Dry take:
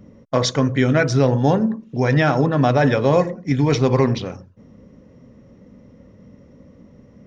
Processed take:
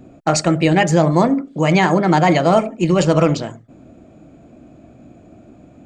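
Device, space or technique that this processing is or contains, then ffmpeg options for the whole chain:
nightcore: -af "asetrate=54684,aresample=44100,volume=2.5dB"

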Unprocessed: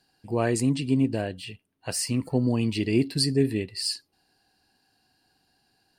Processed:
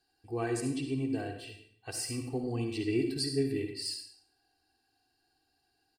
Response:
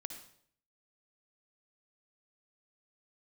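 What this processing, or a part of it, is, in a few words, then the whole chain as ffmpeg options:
microphone above a desk: -filter_complex "[0:a]aecho=1:1:2.6:0.8[a];[1:a]atrim=start_sample=2205[b];[a][b]afir=irnorm=-1:irlink=0,volume=-7dB"

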